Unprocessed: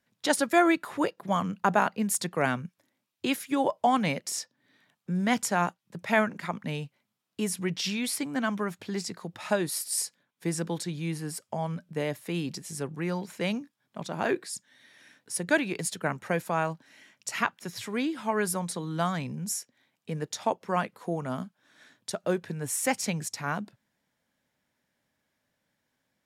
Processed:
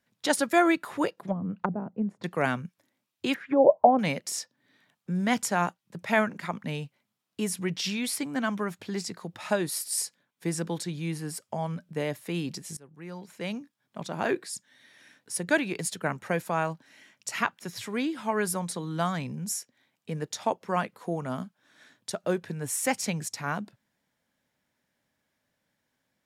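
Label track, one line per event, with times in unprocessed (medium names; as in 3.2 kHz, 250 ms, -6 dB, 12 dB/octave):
1.110000	2.240000	low-pass that closes with the level closes to 310 Hz, closed at -22.5 dBFS
3.340000	3.990000	touch-sensitive low-pass 590–2100 Hz down, full sweep at -22.5 dBFS
12.770000	13.990000	fade in, from -23.5 dB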